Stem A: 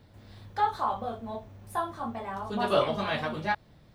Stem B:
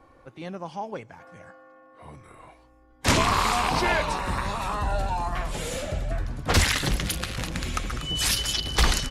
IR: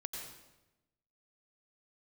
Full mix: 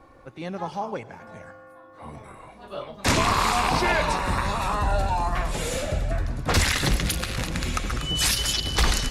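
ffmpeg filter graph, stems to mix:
-filter_complex "[0:a]tremolo=f=1.4:d=0.85,volume=0.335[s0];[1:a]volume=1.19,asplit=2[s1][s2];[s2]volume=0.299[s3];[2:a]atrim=start_sample=2205[s4];[s3][s4]afir=irnorm=-1:irlink=0[s5];[s0][s1][s5]amix=inputs=3:normalize=0,bandreject=f=3100:w=22,alimiter=limit=0.266:level=0:latency=1:release=70"

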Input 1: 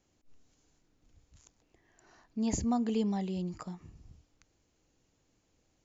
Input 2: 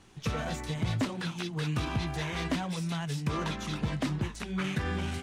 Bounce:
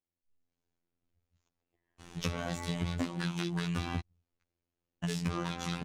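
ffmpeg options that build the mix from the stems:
-filter_complex "[0:a]lowpass=4000,volume=0.1[s0];[1:a]adelay=2000,volume=1.12,asplit=3[s1][s2][s3];[s1]atrim=end=4,asetpts=PTS-STARTPTS,afade=t=out:st=3.996:d=0.004:c=hsin[s4];[s2]atrim=start=4:end=5.04,asetpts=PTS-STARTPTS,volume=0[s5];[s3]atrim=start=5.04,asetpts=PTS-STARTPTS,afade=t=in:d=0.004:c=hsin[s6];[s4][s5][s6]concat=n=3:v=0:a=1[s7];[s0][s7]amix=inputs=2:normalize=0,dynaudnorm=f=130:g=7:m=2.66,afftfilt=real='hypot(re,im)*cos(PI*b)':imag='0':win_size=2048:overlap=0.75,acompressor=threshold=0.0316:ratio=6"

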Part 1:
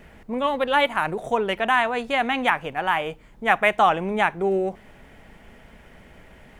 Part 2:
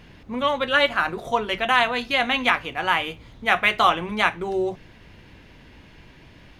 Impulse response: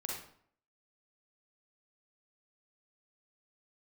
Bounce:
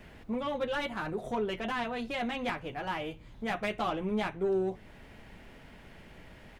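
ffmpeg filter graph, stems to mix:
-filter_complex "[0:a]asoftclip=type=tanh:threshold=0.106,volume=0.562[s0];[1:a]adelay=6.6,volume=0.376[s1];[s0][s1]amix=inputs=2:normalize=0,acrossover=split=500[s2][s3];[s3]acompressor=threshold=0.00282:ratio=1.5[s4];[s2][s4]amix=inputs=2:normalize=0"

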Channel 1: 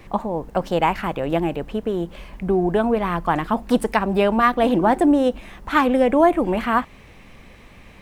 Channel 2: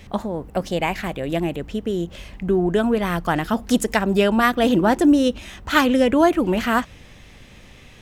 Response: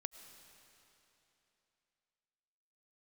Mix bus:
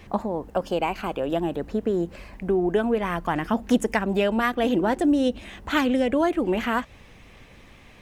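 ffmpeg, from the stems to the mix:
-filter_complex "[0:a]highpass=f=210:w=0.5412,highpass=f=210:w=1.3066,acompressor=threshold=0.0891:ratio=6,volume=0.562[s0];[1:a]highshelf=f=5900:g=-4.5,aphaser=in_gain=1:out_gain=1:delay=2.6:decay=0.3:speed=0.54:type=sinusoidal,volume=-1,volume=0.422[s1];[s0][s1]amix=inputs=2:normalize=0"

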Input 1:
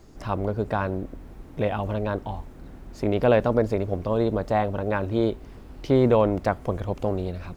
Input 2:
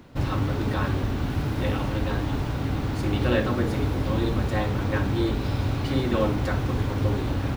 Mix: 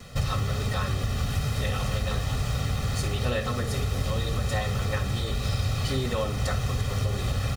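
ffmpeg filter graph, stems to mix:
-filter_complex "[0:a]volume=0.178[s0];[1:a]equalizer=f=8000:w=0.47:g=12.5,acompressor=threshold=0.0355:ratio=6,aecho=1:1:1.6:0.99,adelay=2.8,volume=1.26[s1];[s0][s1]amix=inputs=2:normalize=0,equalizer=f=640:t=o:w=0.54:g=-4.5"

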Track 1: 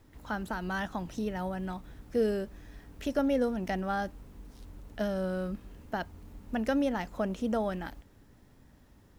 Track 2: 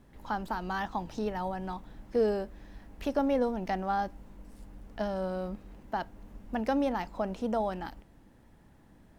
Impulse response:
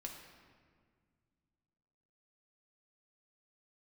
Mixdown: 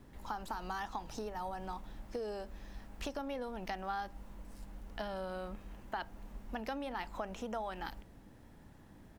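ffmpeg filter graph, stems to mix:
-filter_complex "[0:a]acompressor=threshold=0.0224:ratio=6,volume=0.501[s0];[1:a]acompressor=threshold=0.0224:ratio=6,volume=-1,adelay=0.4,volume=1.06[s1];[s0][s1]amix=inputs=2:normalize=0"

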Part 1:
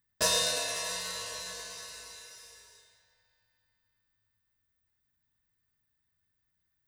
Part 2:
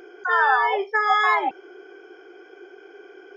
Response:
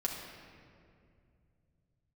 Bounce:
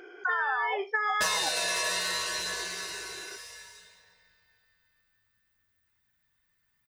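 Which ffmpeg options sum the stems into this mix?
-filter_complex "[0:a]lowshelf=f=160:g=-4,aphaser=in_gain=1:out_gain=1:delay=2:decay=0.22:speed=0.65:type=triangular,adelay=1000,volume=1.19,asplit=2[s0][s1];[s1]volume=0.355[s2];[1:a]acompressor=threshold=0.112:ratio=6,volume=0.531[s3];[2:a]atrim=start_sample=2205[s4];[s2][s4]afir=irnorm=-1:irlink=0[s5];[s0][s3][s5]amix=inputs=3:normalize=0,equalizer=f=2000:w=0.79:g=6.5,acompressor=threshold=0.0562:ratio=6"

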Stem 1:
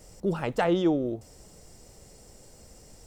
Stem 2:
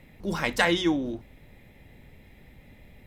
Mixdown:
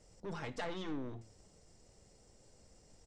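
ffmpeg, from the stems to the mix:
-filter_complex "[0:a]aeval=exprs='(tanh(35.5*val(0)+0.55)-tanh(0.55))/35.5':c=same,volume=0.596,asplit=2[s0][s1];[1:a]acompressor=threshold=0.0355:ratio=6,volume=-1,adelay=2.2,volume=0.355[s2];[s1]apad=whole_len=135365[s3];[s2][s3]sidechaingate=range=0.0224:threshold=0.00501:ratio=16:detection=peak[s4];[s0][s4]amix=inputs=2:normalize=0,lowpass=f=8100:w=0.5412,lowpass=f=8100:w=1.3066,flanger=delay=8.3:depth=3.8:regen=89:speed=0.87:shape=triangular"

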